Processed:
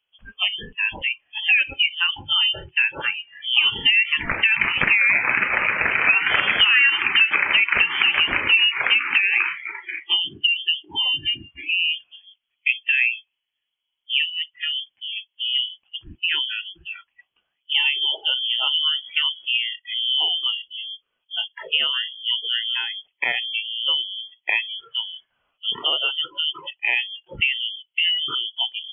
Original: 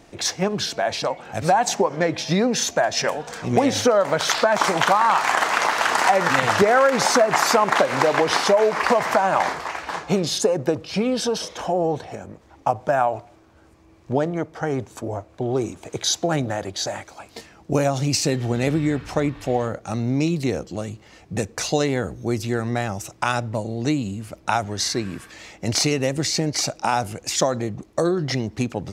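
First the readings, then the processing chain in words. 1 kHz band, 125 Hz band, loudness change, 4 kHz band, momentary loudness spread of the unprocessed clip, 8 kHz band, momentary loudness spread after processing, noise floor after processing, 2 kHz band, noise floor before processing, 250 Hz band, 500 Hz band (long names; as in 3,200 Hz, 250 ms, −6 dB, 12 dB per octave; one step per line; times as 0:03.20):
−11.5 dB, below −15 dB, +2.0 dB, +10.0 dB, 12 LU, below −40 dB, 13 LU, −78 dBFS, +7.0 dB, −52 dBFS, −20.0 dB, −20.5 dB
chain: noise reduction from a noise print of the clip's start 28 dB
voice inversion scrambler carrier 3,300 Hz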